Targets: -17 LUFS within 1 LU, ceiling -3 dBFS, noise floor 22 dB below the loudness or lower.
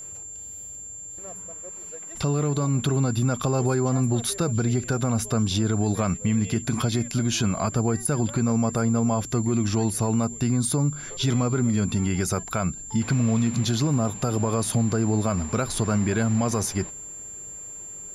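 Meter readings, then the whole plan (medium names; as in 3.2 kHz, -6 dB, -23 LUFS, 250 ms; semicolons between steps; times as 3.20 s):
tick rate 37 per s; steady tone 7.3 kHz; tone level -36 dBFS; loudness -24.0 LUFS; peak level -13.0 dBFS; loudness target -17.0 LUFS
-> de-click; band-stop 7.3 kHz, Q 30; trim +7 dB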